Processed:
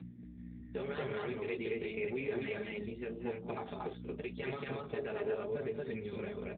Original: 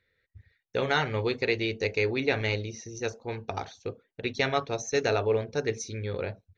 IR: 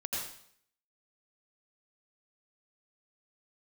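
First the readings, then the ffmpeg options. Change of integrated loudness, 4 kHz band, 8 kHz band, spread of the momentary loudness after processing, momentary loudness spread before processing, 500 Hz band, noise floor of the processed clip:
−10.0 dB, −17.5 dB, can't be measured, 6 LU, 10 LU, −8.5 dB, −50 dBFS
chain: -filter_complex "[0:a]aeval=exprs='val(0)+0.01*(sin(2*PI*60*n/s)+sin(2*PI*2*60*n/s)/2+sin(2*PI*3*60*n/s)/3+sin(2*PI*4*60*n/s)/4+sin(2*PI*5*60*n/s)/5)':channel_layout=same,alimiter=limit=-22dB:level=0:latency=1:release=38,highpass=frequency=52:width=0.5412,highpass=frequency=52:width=1.3066,acompressor=threshold=-38dB:ratio=5,flanger=delay=6.1:depth=7.5:regen=-31:speed=0.87:shape=triangular,asoftclip=type=tanh:threshold=-31.5dB,aecho=1:1:4.9:0.63,asplit=2[link_01][link_02];[link_02]aecho=0:1:186.6|230.3:0.282|0.891[link_03];[link_01][link_03]amix=inputs=2:normalize=0,volume=4.5dB" -ar 8000 -c:a libopencore_amrnb -b:a 7400

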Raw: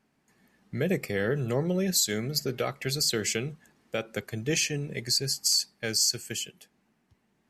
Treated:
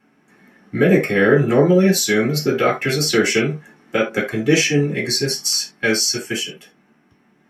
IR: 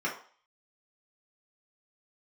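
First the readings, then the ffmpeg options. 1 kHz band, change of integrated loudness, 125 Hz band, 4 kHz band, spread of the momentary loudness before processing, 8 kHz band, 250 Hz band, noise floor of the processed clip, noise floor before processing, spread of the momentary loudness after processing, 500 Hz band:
+15.0 dB, +10.5 dB, +11.0 dB, +6.5 dB, 10 LU, +5.5 dB, +14.5 dB, −59 dBFS, −72 dBFS, 10 LU, +14.0 dB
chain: -filter_complex "[1:a]atrim=start_sample=2205,atrim=end_sample=3969[link_01];[0:a][link_01]afir=irnorm=-1:irlink=0,volume=6.5dB"

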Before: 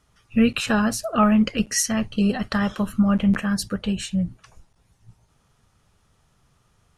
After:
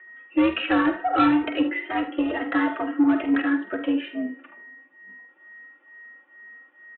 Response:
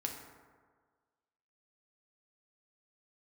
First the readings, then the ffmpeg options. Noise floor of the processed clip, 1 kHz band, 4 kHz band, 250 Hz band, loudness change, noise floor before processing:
−57 dBFS, +2.5 dB, −4.5 dB, −1.5 dB, −1.5 dB, −64 dBFS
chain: -filter_complex "[0:a]asplit=2[link_01][link_02];[1:a]atrim=start_sample=2205[link_03];[link_02][link_03]afir=irnorm=-1:irlink=0,volume=-10.5dB[link_04];[link_01][link_04]amix=inputs=2:normalize=0,aeval=exprs='val(0)+0.00501*sin(2*PI*1800*n/s)':channel_layout=same,highpass=frequency=210:width_type=q:width=0.5412,highpass=frequency=210:width_type=q:width=1.307,lowpass=frequency=2600:width_type=q:width=0.5176,lowpass=frequency=2600:width_type=q:width=0.7071,lowpass=frequency=2600:width_type=q:width=1.932,afreqshift=81,aresample=8000,asoftclip=type=tanh:threshold=-15.5dB,aresample=44100,aecho=1:1:47|75:0.316|0.237,asplit=2[link_05][link_06];[link_06]adelay=2.9,afreqshift=2.2[link_07];[link_05][link_07]amix=inputs=2:normalize=1,volume=4dB"

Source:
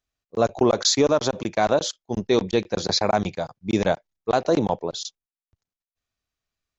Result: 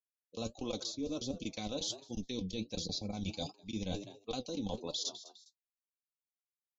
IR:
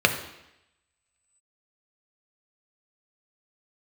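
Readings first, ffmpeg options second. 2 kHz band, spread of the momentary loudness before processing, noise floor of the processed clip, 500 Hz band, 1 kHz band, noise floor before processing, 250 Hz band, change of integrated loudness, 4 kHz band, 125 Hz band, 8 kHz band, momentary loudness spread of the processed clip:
−21.0 dB, 12 LU, below −85 dBFS, −21.0 dB, −23.5 dB, below −85 dBFS, −14.0 dB, −16.5 dB, −12.5 dB, −13.0 dB, can't be measured, 5 LU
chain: -filter_complex "[0:a]aexciter=amount=12.9:drive=6.6:freq=2600,lowshelf=frequency=430:gain=-6,acrossover=split=410[link_01][link_02];[link_02]acompressor=threshold=-28dB:ratio=4[link_03];[link_01][link_03]amix=inputs=2:normalize=0,aecho=1:1:3.9:0.52,afftfilt=real='re*gte(hypot(re,im),0.0126)':imag='im*gte(hypot(re,im),0.0126)':win_size=1024:overlap=0.75,aemphasis=mode=reproduction:type=bsi,asplit=2[link_04][link_05];[link_05]asplit=2[link_06][link_07];[link_06]adelay=205,afreqshift=100,volume=-22dB[link_08];[link_07]adelay=410,afreqshift=200,volume=-31.1dB[link_09];[link_08][link_09]amix=inputs=2:normalize=0[link_10];[link_04][link_10]amix=inputs=2:normalize=0,flanger=delay=5.7:depth=5.4:regen=57:speed=1.4:shape=triangular,areverse,acompressor=threshold=-40dB:ratio=10,areverse,volume=4.5dB"

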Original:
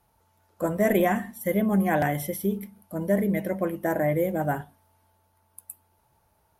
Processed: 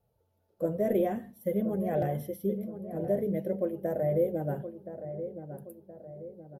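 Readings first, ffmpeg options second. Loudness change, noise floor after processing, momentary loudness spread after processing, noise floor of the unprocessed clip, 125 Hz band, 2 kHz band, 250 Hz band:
−5.5 dB, −74 dBFS, 17 LU, −68 dBFS, −5.0 dB, −18.0 dB, −6.5 dB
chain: -filter_complex "[0:a]equalizer=frequency=125:width_type=o:width=1:gain=7,equalizer=frequency=500:width_type=o:width=1:gain=11,equalizer=frequency=1000:width_type=o:width=1:gain=-9,equalizer=frequency=2000:width_type=o:width=1:gain=-7,equalizer=frequency=8000:width_type=o:width=1:gain=-11,flanger=delay=1.5:depth=6.8:regen=-48:speed=0.5:shape=sinusoidal,asplit=2[link_01][link_02];[link_02]adelay=1022,lowpass=frequency=1300:poles=1,volume=-10dB,asplit=2[link_03][link_04];[link_04]adelay=1022,lowpass=frequency=1300:poles=1,volume=0.49,asplit=2[link_05][link_06];[link_06]adelay=1022,lowpass=frequency=1300:poles=1,volume=0.49,asplit=2[link_07][link_08];[link_08]adelay=1022,lowpass=frequency=1300:poles=1,volume=0.49,asplit=2[link_09][link_10];[link_10]adelay=1022,lowpass=frequency=1300:poles=1,volume=0.49[link_11];[link_03][link_05][link_07][link_09][link_11]amix=inputs=5:normalize=0[link_12];[link_01][link_12]amix=inputs=2:normalize=0,volume=-6dB"

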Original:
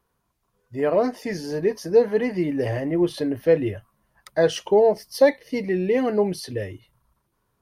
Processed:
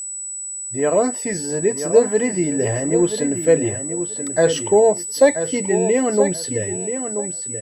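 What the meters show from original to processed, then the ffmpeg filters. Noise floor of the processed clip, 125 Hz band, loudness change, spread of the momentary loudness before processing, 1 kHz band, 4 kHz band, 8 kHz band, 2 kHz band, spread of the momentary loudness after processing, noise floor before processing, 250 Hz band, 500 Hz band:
−30 dBFS, +3.5 dB, +3.5 dB, 11 LU, +3.5 dB, +3.5 dB, +23.0 dB, +3.5 dB, 8 LU, −73 dBFS, +3.5 dB, +3.5 dB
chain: -filter_complex "[0:a]aeval=exprs='val(0)+0.0316*sin(2*PI*7900*n/s)':channel_layout=same,asplit=2[link_01][link_02];[link_02]adelay=982,lowpass=frequency=3400:poles=1,volume=-8.5dB,asplit=2[link_03][link_04];[link_04]adelay=982,lowpass=frequency=3400:poles=1,volume=0.21,asplit=2[link_05][link_06];[link_06]adelay=982,lowpass=frequency=3400:poles=1,volume=0.21[link_07];[link_01][link_03][link_05][link_07]amix=inputs=4:normalize=0,volume=3dB"

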